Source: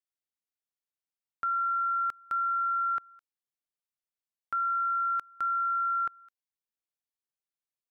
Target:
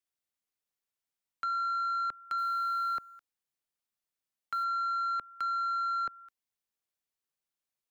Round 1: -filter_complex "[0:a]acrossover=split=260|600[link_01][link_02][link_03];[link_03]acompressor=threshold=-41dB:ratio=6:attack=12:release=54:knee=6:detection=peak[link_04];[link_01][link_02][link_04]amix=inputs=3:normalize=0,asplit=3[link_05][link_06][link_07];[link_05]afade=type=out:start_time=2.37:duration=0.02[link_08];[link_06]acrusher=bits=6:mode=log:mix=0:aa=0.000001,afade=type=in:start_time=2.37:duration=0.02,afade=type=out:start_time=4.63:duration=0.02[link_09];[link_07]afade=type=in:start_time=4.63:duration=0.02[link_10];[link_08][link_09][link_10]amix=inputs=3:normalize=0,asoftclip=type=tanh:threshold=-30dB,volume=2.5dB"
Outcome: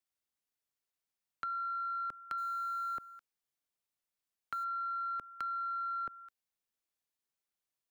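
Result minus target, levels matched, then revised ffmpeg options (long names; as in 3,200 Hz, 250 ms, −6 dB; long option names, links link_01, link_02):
downward compressor: peak gain reduction +8 dB
-filter_complex "[0:a]acrossover=split=260|600[link_01][link_02][link_03];[link_03]acompressor=threshold=-30.5dB:ratio=6:attack=12:release=54:knee=6:detection=peak[link_04];[link_01][link_02][link_04]amix=inputs=3:normalize=0,asplit=3[link_05][link_06][link_07];[link_05]afade=type=out:start_time=2.37:duration=0.02[link_08];[link_06]acrusher=bits=6:mode=log:mix=0:aa=0.000001,afade=type=in:start_time=2.37:duration=0.02,afade=type=out:start_time=4.63:duration=0.02[link_09];[link_07]afade=type=in:start_time=4.63:duration=0.02[link_10];[link_08][link_09][link_10]amix=inputs=3:normalize=0,asoftclip=type=tanh:threshold=-30dB,volume=2.5dB"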